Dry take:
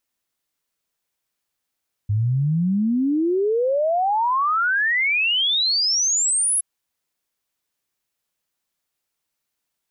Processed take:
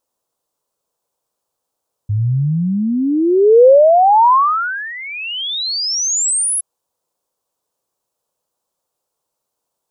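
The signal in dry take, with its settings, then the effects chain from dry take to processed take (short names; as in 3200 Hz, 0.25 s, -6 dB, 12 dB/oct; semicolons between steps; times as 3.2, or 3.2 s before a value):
log sweep 100 Hz -> 11000 Hz 4.52 s -17 dBFS
graphic EQ 125/500/1000/2000/8000 Hz +4/+12/+10/-11/+4 dB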